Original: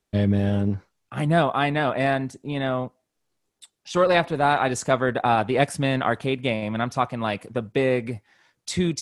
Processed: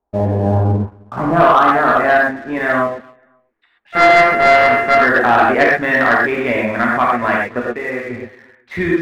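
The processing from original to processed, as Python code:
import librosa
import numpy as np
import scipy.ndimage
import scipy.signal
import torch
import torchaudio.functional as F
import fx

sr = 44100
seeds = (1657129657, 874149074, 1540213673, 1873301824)

p1 = fx.sample_sort(x, sr, block=64, at=(3.92, 4.97), fade=0.02)
p2 = scipy.signal.sosfilt(scipy.signal.butter(2, 3200.0, 'lowpass', fs=sr, output='sos'), p1)
p3 = fx.peak_eq(p2, sr, hz=140.0, db=-14.0, octaves=0.54)
p4 = fx.echo_feedback(p3, sr, ms=264, feedback_pct=31, wet_db=-23.5)
p5 = fx.filter_sweep_lowpass(p4, sr, from_hz=860.0, to_hz=1800.0, start_s=0.53, end_s=2.62, q=3.8)
p6 = fx.low_shelf(p5, sr, hz=190.0, db=8.5, at=(0.46, 1.3))
p7 = fx.comb_fb(p6, sr, f0_hz=75.0, decay_s=1.6, harmonics='all', damping=0.0, mix_pct=70, at=(7.59, 8.09), fade=0.02)
p8 = fx.rev_gated(p7, sr, seeds[0], gate_ms=150, shape='flat', drr_db=-3.0)
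p9 = 10.0 ** (-7.5 / 20.0) * np.tanh(p8 / 10.0 ** (-7.5 / 20.0))
p10 = p8 + F.gain(torch.from_numpy(p9), -4.0).numpy()
p11 = fx.leveller(p10, sr, passes=1)
y = F.gain(torch.from_numpy(p11), -4.0).numpy()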